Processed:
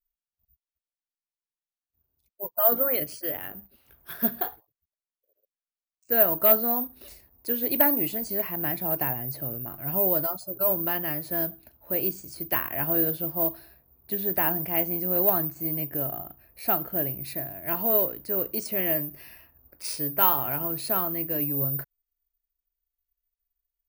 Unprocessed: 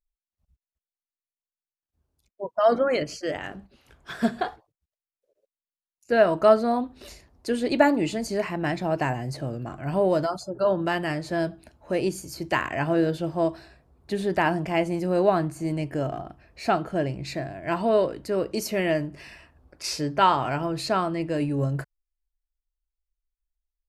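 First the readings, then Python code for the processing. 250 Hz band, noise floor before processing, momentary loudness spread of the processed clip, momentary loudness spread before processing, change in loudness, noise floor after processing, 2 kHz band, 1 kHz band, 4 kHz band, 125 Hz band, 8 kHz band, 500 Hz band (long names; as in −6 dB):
−6.5 dB, below −85 dBFS, 12 LU, 12 LU, +1.0 dB, below −85 dBFS, −6.5 dB, −6.5 dB, −6.5 dB, −6.5 dB, −2.0 dB, −6.5 dB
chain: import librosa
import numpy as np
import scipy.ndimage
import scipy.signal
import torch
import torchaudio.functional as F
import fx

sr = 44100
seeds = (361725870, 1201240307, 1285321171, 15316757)

y = 10.0 ** (-8.5 / 20.0) * (np.abs((x / 10.0 ** (-8.5 / 20.0) + 3.0) % 4.0 - 2.0) - 1.0)
y = (np.kron(scipy.signal.resample_poly(y, 1, 3), np.eye(3)[0]) * 3)[:len(y)]
y = F.gain(torch.from_numpy(y), -6.5).numpy()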